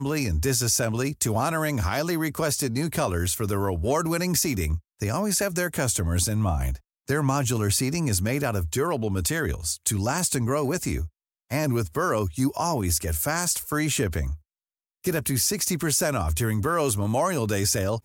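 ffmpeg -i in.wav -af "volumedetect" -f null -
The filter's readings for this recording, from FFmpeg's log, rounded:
mean_volume: -25.4 dB
max_volume: -9.6 dB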